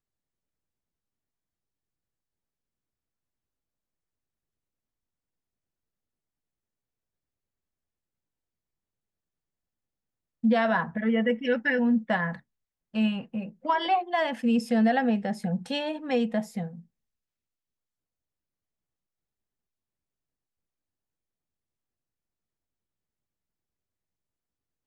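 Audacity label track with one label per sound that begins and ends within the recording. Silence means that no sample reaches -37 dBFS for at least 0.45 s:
10.440000	12.370000	sound
12.940000	16.790000	sound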